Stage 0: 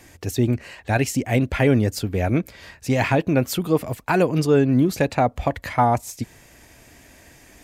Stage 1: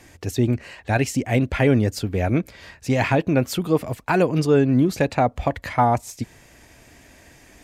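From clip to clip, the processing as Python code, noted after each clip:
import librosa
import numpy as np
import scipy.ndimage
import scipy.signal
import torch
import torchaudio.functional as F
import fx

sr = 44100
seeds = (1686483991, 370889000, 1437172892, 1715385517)

y = fx.high_shelf(x, sr, hz=12000.0, db=-9.0)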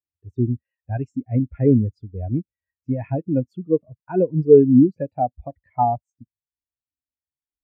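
y = fx.spectral_expand(x, sr, expansion=2.5)
y = y * librosa.db_to_amplitude(6.0)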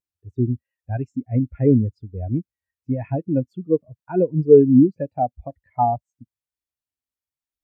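y = fx.vibrato(x, sr, rate_hz=0.67, depth_cents=19.0)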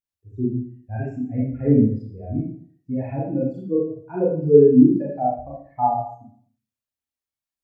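y = fx.rev_schroeder(x, sr, rt60_s=0.54, comb_ms=28, drr_db=-6.5)
y = y * librosa.db_to_amplitude(-7.5)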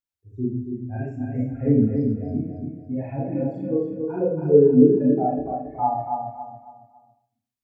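y = fx.echo_feedback(x, sr, ms=278, feedback_pct=35, wet_db=-5.0)
y = y * librosa.db_to_amplitude(-2.5)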